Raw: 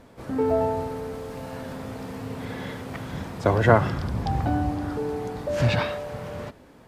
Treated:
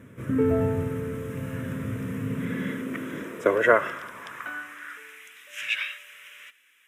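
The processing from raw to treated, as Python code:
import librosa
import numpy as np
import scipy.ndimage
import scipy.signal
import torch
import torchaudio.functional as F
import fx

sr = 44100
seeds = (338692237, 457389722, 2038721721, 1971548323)

y = fx.fixed_phaser(x, sr, hz=1900.0, stages=4)
y = fx.filter_sweep_highpass(y, sr, from_hz=110.0, to_hz=2700.0, start_s=2.04, end_s=5.33, q=1.8)
y = y * 10.0 ** (3.5 / 20.0)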